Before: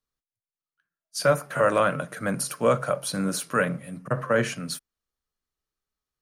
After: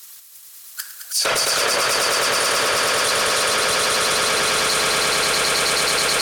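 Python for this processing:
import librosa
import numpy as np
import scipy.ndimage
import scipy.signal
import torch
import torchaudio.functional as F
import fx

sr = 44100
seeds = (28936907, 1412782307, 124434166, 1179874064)

y = fx.halfwave_hold(x, sr)
y = fx.env_lowpass_down(y, sr, base_hz=2300.0, full_db=-17.0)
y = np.diff(y, prepend=0.0)
y = fx.whisperise(y, sr, seeds[0])
y = fx.echo_swell(y, sr, ms=107, loudest=8, wet_db=-3.5)
y = fx.env_flatten(y, sr, amount_pct=100)
y = y * librosa.db_to_amplitude(8.5)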